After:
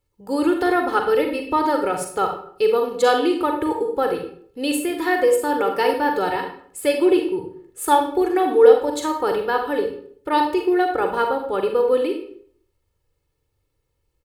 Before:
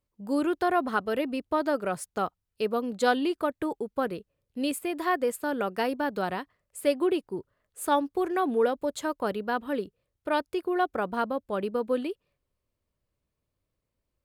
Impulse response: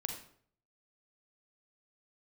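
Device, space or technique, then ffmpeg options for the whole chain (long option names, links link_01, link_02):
microphone above a desk: -filter_complex "[0:a]aecho=1:1:2.3:0.76[link_01];[1:a]atrim=start_sample=2205[link_02];[link_01][link_02]afir=irnorm=-1:irlink=0,volume=6dB"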